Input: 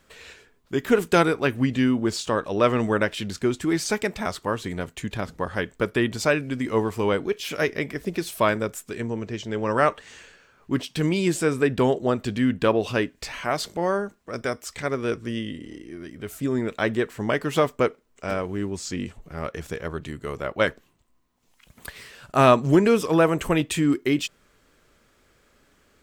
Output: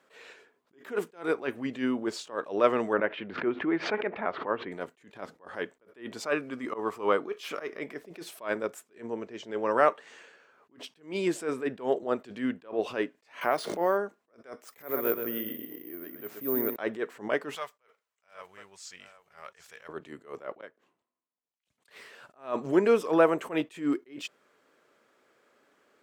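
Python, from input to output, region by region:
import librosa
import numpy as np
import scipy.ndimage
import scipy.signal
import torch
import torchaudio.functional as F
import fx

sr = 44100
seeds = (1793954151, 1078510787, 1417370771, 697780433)

y = fx.chain(x, sr, fx.lowpass(hz=2600.0, slope=24),
    fx.pre_swell(db_per_s=94.0), at=(2.93, 4.72))
y = fx.chain(y, sr, fx.peak_eq(hz=1200.0, db=9.5, octaves=0.27),
    fx.auto_swell(attack_ms=143.0), at=(6.24, 7.8))
y = fx.chain(y, sr, fx.resample_bad(factor=3, down='filtered', up='hold'),
    fx.pre_swell(db_per_s=45.0), at=(13.41, 13.97))
y = fx.chain(y, sr, fx.peak_eq(hz=14000.0, db=-7.5, octaves=2.4),
    fx.echo_feedback(ms=126, feedback_pct=29, wet_db=-8.0),
    fx.resample_bad(factor=3, down='none', up='zero_stuff'), at=(14.64, 16.76))
y = fx.chain(y, sr, fx.tone_stack(knobs='10-0-10'),
    fx.mod_noise(seeds[0], snr_db=34),
    fx.echo_single(ms=768, db=-15.5), at=(17.55, 19.89))
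y = fx.chain(y, sr, fx.lowpass(hz=9200.0, slope=12),
    fx.gate_flip(shuts_db=-16.0, range_db=-28),
    fx.band_widen(depth_pct=100), at=(20.6, 21.9))
y = scipy.signal.sosfilt(scipy.signal.butter(2, 370.0, 'highpass', fs=sr, output='sos'), y)
y = fx.high_shelf(y, sr, hz=2400.0, db=-11.5)
y = fx.attack_slew(y, sr, db_per_s=190.0)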